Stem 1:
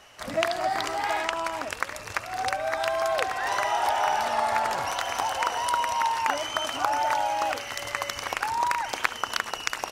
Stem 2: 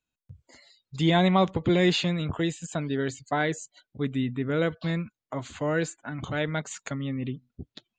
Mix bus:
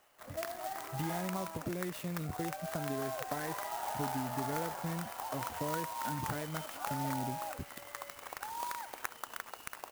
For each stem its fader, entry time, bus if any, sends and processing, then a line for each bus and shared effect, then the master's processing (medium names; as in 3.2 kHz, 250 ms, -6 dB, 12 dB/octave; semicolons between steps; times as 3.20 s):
-12.5 dB, 0.00 s, no send, bass shelf 200 Hz -9.5 dB
-2.0 dB, 0.00 s, no send, compression 12:1, threshold -33 dBFS, peak gain reduction 16.5 dB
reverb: none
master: treble shelf 3.6 kHz -9.5 dB; sampling jitter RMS 0.062 ms